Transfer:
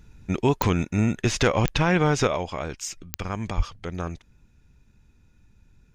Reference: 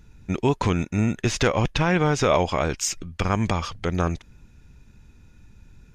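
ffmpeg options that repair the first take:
ffmpeg -i in.wav -filter_complex "[0:a]adeclick=threshold=4,asplit=3[link_01][link_02][link_03];[link_01]afade=type=out:start_time=3.56:duration=0.02[link_04];[link_02]highpass=frequency=140:width=0.5412,highpass=frequency=140:width=1.3066,afade=type=in:start_time=3.56:duration=0.02,afade=type=out:start_time=3.68:duration=0.02[link_05];[link_03]afade=type=in:start_time=3.68:duration=0.02[link_06];[link_04][link_05][link_06]amix=inputs=3:normalize=0,asetnsamples=nb_out_samples=441:pad=0,asendcmd='2.27 volume volume 7.5dB',volume=0dB" out.wav

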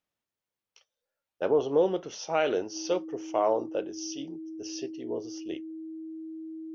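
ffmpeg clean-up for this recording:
ffmpeg -i in.wav -af "bandreject=frequency=320:width=30" out.wav

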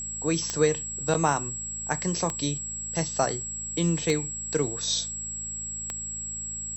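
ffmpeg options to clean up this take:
ffmpeg -i in.wav -af "adeclick=threshold=4,bandreject=frequency=54.5:width_type=h:width=4,bandreject=frequency=109:width_type=h:width=4,bandreject=frequency=163.5:width_type=h:width=4,bandreject=frequency=218:width_type=h:width=4,bandreject=frequency=7700:width=30,agate=range=-21dB:threshold=-27dB" out.wav

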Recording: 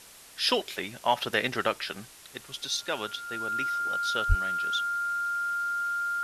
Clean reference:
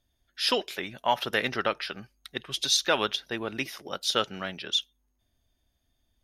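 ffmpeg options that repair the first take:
ffmpeg -i in.wav -filter_complex "[0:a]bandreject=frequency=1400:width=30,asplit=3[link_01][link_02][link_03];[link_01]afade=type=out:start_time=4.28:duration=0.02[link_04];[link_02]highpass=frequency=140:width=0.5412,highpass=frequency=140:width=1.3066,afade=type=in:start_time=4.28:duration=0.02,afade=type=out:start_time=4.4:duration=0.02[link_05];[link_03]afade=type=in:start_time=4.4:duration=0.02[link_06];[link_04][link_05][link_06]amix=inputs=3:normalize=0,afwtdn=0.0035,asetnsamples=nb_out_samples=441:pad=0,asendcmd='2.13 volume volume 7dB',volume=0dB" out.wav

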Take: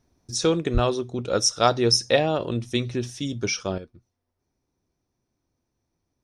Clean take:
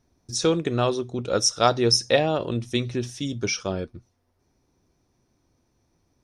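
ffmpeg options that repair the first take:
ffmpeg -i in.wav -filter_complex "[0:a]asplit=3[link_01][link_02][link_03];[link_01]afade=type=out:start_time=0.73:duration=0.02[link_04];[link_02]highpass=frequency=140:width=0.5412,highpass=frequency=140:width=1.3066,afade=type=in:start_time=0.73:duration=0.02,afade=type=out:start_time=0.85:duration=0.02[link_05];[link_03]afade=type=in:start_time=0.85:duration=0.02[link_06];[link_04][link_05][link_06]amix=inputs=3:normalize=0,asetnsamples=nb_out_samples=441:pad=0,asendcmd='3.78 volume volume 9.5dB',volume=0dB" out.wav

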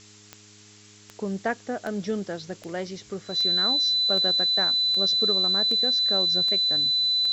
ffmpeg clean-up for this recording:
ffmpeg -i in.wav -af "adeclick=threshold=4,bandreject=frequency=104.2:width_type=h:width=4,bandreject=frequency=208.4:width_type=h:width=4,bandreject=frequency=312.6:width_type=h:width=4,bandreject=frequency=416.8:width_type=h:width=4,bandreject=frequency=4000:width=30,afftdn=noise_reduction=21:noise_floor=-51" out.wav

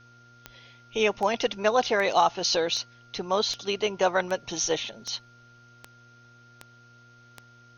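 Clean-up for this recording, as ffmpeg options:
ffmpeg -i in.wav -af "adeclick=threshold=4,bandreject=frequency=119.9:width_type=h:width=4,bandreject=frequency=239.8:width_type=h:width=4,bandreject=frequency=359.7:width_type=h:width=4,bandreject=frequency=479.6:width_type=h:width=4,bandreject=frequency=599.5:width_type=h:width=4,bandreject=frequency=719.4:width_type=h:width=4,bandreject=frequency=1400:width=30,agate=range=-21dB:threshold=-46dB" out.wav

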